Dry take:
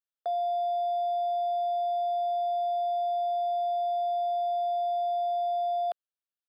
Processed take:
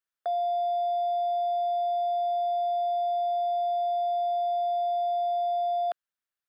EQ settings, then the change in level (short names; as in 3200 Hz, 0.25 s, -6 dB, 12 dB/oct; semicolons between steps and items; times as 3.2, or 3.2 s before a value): bell 1600 Hz +8 dB 1.1 oct; 0.0 dB